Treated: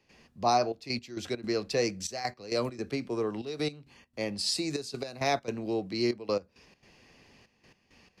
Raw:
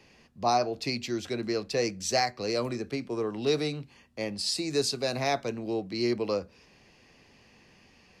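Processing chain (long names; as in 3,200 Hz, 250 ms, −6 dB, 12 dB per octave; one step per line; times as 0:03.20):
gate pattern ".xxxxxxx..x..xx" 167 BPM −12 dB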